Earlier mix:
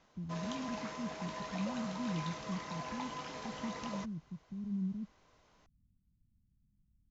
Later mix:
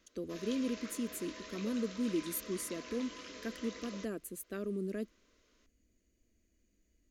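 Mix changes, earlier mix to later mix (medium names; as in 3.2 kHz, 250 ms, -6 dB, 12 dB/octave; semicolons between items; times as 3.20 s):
speech: remove inverse Chebyshev low-pass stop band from 910 Hz, stop band 70 dB; master: add static phaser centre 340 Hz, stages 4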